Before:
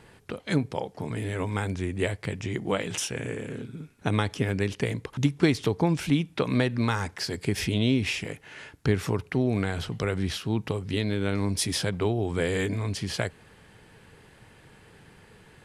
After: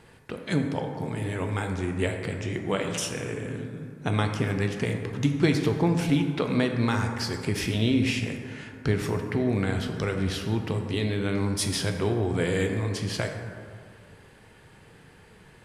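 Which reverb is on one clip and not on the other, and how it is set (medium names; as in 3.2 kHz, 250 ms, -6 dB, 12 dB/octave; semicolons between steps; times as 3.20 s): plate-style reverb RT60 2.2 s, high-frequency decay 0.4×, DRR 4 dB; trim -1 dB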